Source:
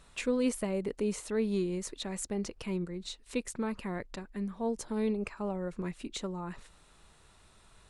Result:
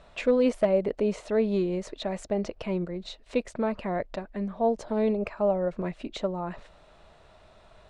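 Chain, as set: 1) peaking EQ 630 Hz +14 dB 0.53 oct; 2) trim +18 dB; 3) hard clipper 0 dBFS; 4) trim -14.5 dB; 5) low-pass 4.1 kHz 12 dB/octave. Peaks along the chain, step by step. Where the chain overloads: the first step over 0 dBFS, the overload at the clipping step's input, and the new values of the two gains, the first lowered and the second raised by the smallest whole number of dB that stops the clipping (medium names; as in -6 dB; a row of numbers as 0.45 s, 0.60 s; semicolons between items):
-14.0 dBFS, +4.0 dBFS, 0.0 dBFS, -14.5 dBFS, -14.5 dBFS; step 2, 4.0 dB; step 2 +14 dB, step 4 -10.5 dB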